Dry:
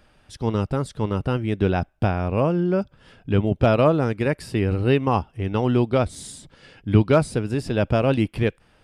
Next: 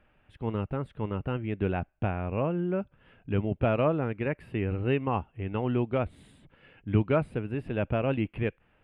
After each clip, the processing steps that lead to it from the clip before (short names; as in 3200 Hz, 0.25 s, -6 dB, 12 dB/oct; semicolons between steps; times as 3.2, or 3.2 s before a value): EQ curve 1300 Hz 0 dB, 2700 Hz +2 dB, 5600 Hz -29 dB, 10000 Hz -18 dB; gain -8 dB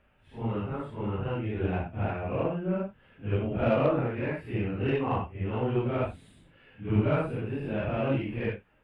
phase scrambler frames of 0.2 s; added harmonics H 6 -27 dB, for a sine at -12 dBFS